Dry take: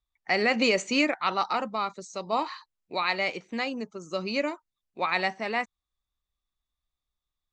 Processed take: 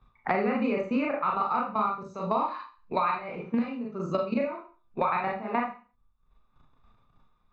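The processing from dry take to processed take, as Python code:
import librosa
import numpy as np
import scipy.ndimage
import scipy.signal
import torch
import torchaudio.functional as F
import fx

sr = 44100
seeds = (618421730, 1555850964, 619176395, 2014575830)

y = scipy.signal.sosfilt(scipy.signal.butter(2, 1100.0, 'lowpass', fs=sr, output='sos'), x)
y = fx.peak_eq(y, sr, hz=310.0, db=-11.5, octaves=0.3)
y = y + 0.46 * np.pad(y, (int(0.8 * sr / 1000.0), 0))[:len(y)]
y = fx.level_steps(y, sr, step_db=16)
y = fx.rev_schroeder(y, sr, rt60_s=0.31, comb_ms=26, drr_db=-2.0)
y = fx.band_squash(y, sr, depth_pct=100)
y = y * 10.0 ** (3.0 / 20.0)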